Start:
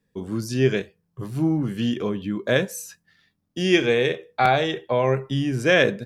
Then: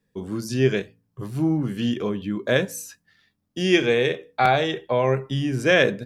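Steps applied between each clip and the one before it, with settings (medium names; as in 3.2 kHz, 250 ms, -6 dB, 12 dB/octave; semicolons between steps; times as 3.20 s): de-hum 55.67 Hz, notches 5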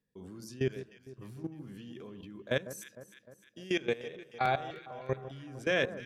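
level held to a coarse grid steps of 19 dB; echo whose repeats swap between lows and highs 152 ms, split 1.4 kHz, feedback 73%, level -13 dB; trim -8.5 dB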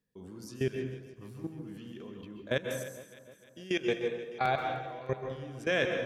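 plate-style reverb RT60 0.74 s, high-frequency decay 0.55×, pre-delay 120 ms, DRR 4 dB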